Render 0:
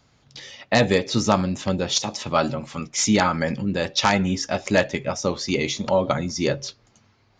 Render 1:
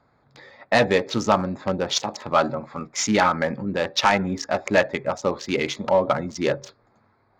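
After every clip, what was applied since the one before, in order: Wiener smoothing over 15 samples; overdrive pedal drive 12 dB, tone 2800 Hz, clips at -1.5 dBFS; gain -1.5 dB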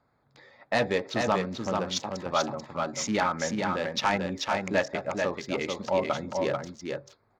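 echo 0.438 s -4 dB; gain -7.5 dB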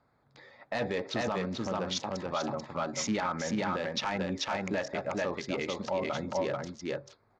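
LPF 7400 Hz 12 dB/oct; limiter -22 dBFS, peak gain reduction 10 dB

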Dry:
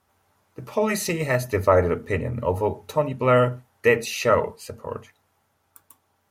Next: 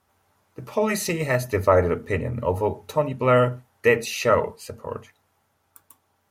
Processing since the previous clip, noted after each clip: nothing audible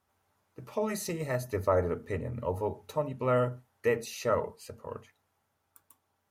dynamic EQ 2500 Hz, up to -7 dB, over -40 dBFS, Q 1.3; gain -8.5 dB

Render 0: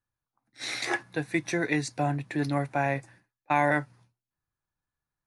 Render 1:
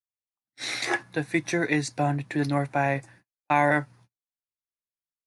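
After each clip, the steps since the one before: gate -56 dBFS, range -27 dB; gain +2.5 dB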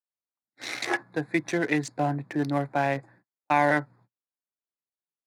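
Wiener smoothing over 15 samples; HPF 150 Hz 12 dB/oct

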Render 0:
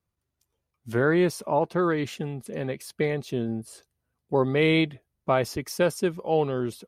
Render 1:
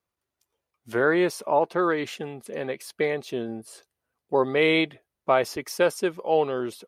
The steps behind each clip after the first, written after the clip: tone controls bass -14 dB, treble -3 dB; gain +3 dB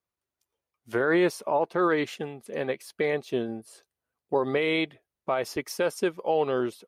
limiter -18 dBFS, peak gain reduction 10 dB; upward expander 1.5:1, over -42 dBFS; gain +4 dB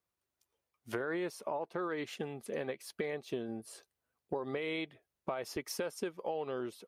compressor 5:1, threshold -35 dBFS, peak gain reduction 14.5 dB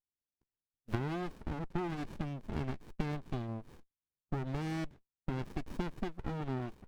gate -53 dBFS, range -18 dB; running maximum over 65 samples; gain +2 dB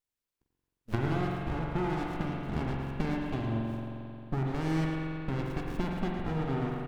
feedback echo 0.111 s, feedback 43%, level -9 dB; spring tank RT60 2.9 s, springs 44 ms, chirp 35 ms, DRR -0.5 dB; gain +3 dB

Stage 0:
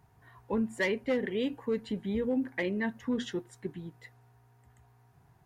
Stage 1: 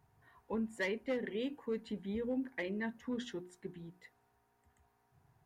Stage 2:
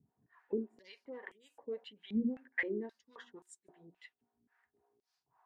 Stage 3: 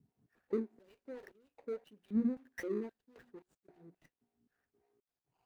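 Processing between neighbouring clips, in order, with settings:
notches 60/120/180/240/300/360 Hz; gain -6.5 dB
harmonic tremolo 3.6 Hz, depth 100%, crossover 470 Hz; stepped band-pass 3.8 Hz 230–7900 Hz; gain +13 dB
median filter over 41 samples; gain +1.5 dB

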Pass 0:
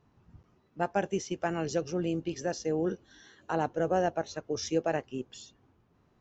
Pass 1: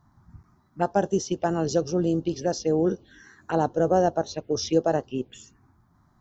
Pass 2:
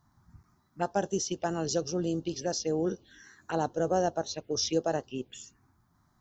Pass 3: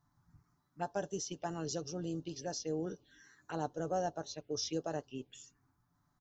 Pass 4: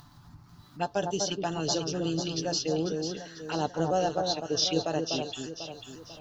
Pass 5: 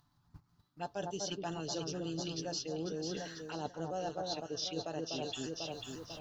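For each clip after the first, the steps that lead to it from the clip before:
envelope phaser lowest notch 450 Hz, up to 2300 Hz, full sweep at -29 dBFS; gain +7.5 dB
high shelf 2200 Hz +9.5 dB; gain -7 dB
comb 6.9 ms, depth 40%; gain -8.5 dB
band shelf 3500 Hz +9.5 dB 1.1 oct; upward compressor, threshold -50 dBFS; echo with dull and thin repeats by turns 0.247 s, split 1300 Hz, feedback 64%, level -4 dB; gain +7.5 dB
gate -47 dBFS, range -19 dB; reverse; compressor 6:1, threshold -36 dBFS, peak gain reduction 13.5 dB; reverse

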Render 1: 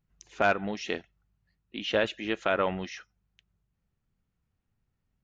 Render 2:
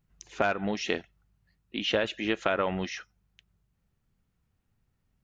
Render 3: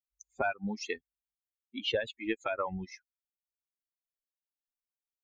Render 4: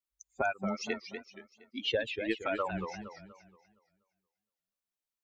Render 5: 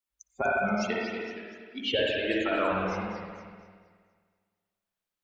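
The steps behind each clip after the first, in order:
compressor 10:1, threshold -26 dBFS, peak gain reduction 8 dB; gain +4 dB
per-bin expansion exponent 3
warbling echo 0.236 s, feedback 38%, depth 207 cents, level -7.5 dB
reverb RT60 1.5 s, pre-delay 52 ms, DRR -4 dB; gain +1 dB

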